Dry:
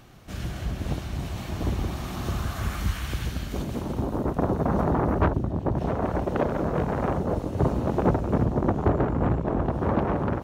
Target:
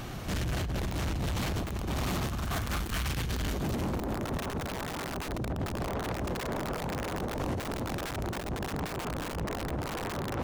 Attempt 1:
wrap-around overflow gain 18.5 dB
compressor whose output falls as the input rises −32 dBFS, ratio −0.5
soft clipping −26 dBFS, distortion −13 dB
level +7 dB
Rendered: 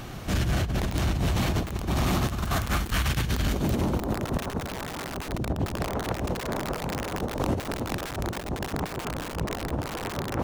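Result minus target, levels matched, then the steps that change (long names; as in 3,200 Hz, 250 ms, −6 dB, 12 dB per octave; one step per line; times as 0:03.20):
soft clipping: distortion −8 dB
change: soft clipping −36 dBFS, distortion −5 dB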